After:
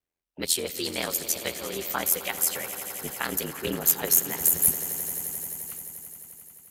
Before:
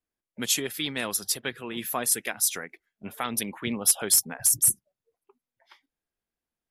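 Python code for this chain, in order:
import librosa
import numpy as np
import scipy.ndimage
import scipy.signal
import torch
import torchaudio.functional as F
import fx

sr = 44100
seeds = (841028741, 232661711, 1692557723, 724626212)

y = x * np.sin(2.0 * np.pi * 42.0 * np.arange(len(x)) / sr)
y = fx.formant_shift(y, sr, semitones=4)
y = fx.echo_swell(y, sr, ms=87, loudest=5, wet_db=-16)
y = y * librosa.db_to_amplitude(3.0)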